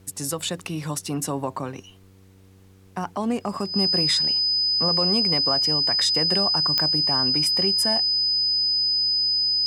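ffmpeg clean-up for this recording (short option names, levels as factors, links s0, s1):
-af "adeclick=t=4,bandreject=f=95.3:t=h:w=4,bandreject=f=190.6:t=h:w=4,bandreject=f=285.9:t=h:w=4,bandreject=f=381.2:t=h:w=4,bandreject=f=476.5:t=h:w=4,bandreject=f=5000:w=30,agate=range=0.0891:threshold=0.00708"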